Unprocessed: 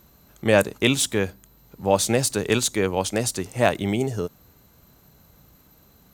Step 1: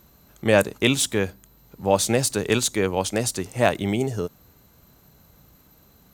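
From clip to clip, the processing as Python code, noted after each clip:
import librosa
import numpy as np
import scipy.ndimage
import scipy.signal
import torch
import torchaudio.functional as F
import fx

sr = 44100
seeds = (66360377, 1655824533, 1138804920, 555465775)

y = x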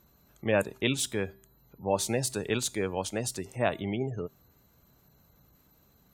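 y = fx.spec_gate(x, sr, threshold_db=-30, keep='strong')
y = fx.comb_fb(y, sr, f0_hz=130.0, decay_s=0.49, harmonics='odd', damping=0.0, mix_pct=40)
y = y * 10.0 ** (-4.0 / 20.0)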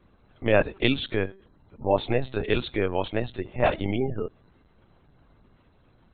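y = fx.lpc_vocoder(x, sr, seeds[0], excitation='pitch_kept', order=16)
y = y * 10.0 ** (5.5 / 20.0)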